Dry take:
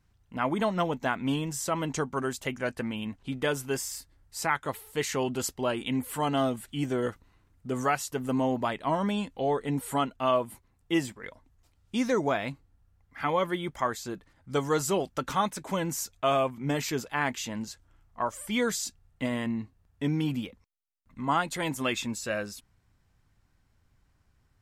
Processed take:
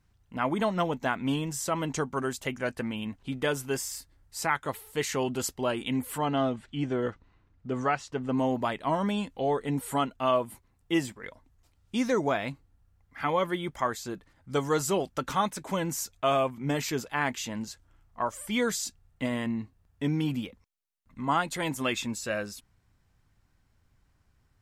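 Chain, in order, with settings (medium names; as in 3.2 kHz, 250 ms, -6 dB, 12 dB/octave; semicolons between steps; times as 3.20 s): 6.18–8.38 s: distance through air 130 m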